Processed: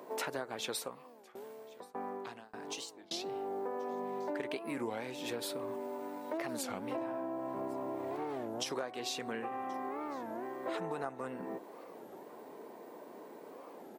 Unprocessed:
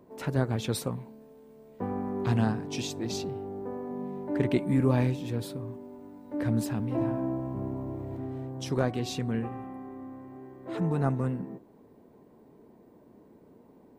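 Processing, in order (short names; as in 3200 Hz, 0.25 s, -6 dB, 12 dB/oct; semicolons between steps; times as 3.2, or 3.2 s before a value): HPF 550 Hz 12 dB/oct; compressor 12:1, threshold -48 dBFS, peak gain reduction 21.5 dB; 0.77–3.24 tremolo saw down 1.7 Hz, depth 100%; echo 1.08 s -24 dB; record warp 33 1/3 rpm, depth 250 cents; gain +13 dB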